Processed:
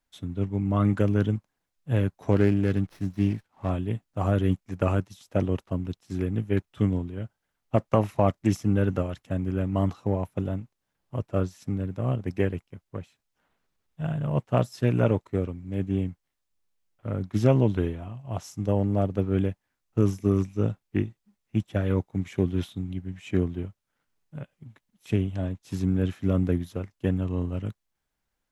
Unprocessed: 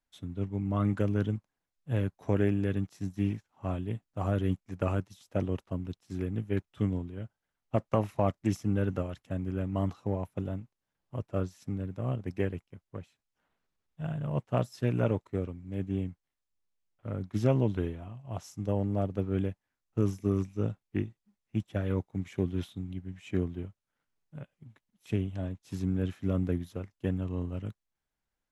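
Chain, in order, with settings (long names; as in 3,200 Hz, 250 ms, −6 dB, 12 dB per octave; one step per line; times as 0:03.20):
0:02.31–0:03.70: windowed peak hold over 5 samples
level +5.5 dB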